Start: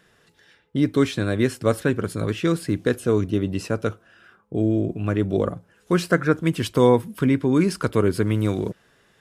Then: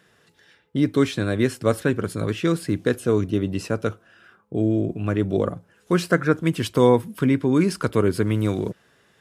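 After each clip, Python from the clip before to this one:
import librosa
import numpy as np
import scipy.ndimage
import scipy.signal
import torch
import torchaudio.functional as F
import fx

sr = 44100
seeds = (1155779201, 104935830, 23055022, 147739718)

y = scipy.signal.sosfilt(scipy.signal.butter(2, 61.0, 'highpass', fs=sr, output='sos'), x)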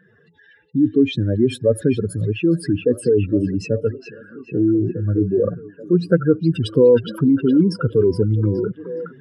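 y = fx.spec_expand(x, sr, power=2.8)
y = fx.echo_stepped(y, sr, ms=417, hz=3400.0, octaves=-0.7, feedback_pct=70, wet_db=-4)
y = y * librosa.db_to_amplitude(4.5)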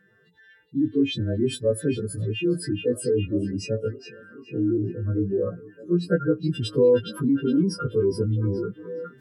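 y = fx.freq_snap(x, sr, grid_st=2)
y = y * librosa.db_to_amplitude(-5.5)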